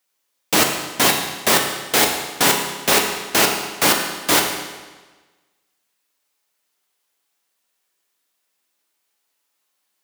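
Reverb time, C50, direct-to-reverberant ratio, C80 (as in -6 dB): 1.3 s, 5.0 dB, 1.5 dB, 6.5 dB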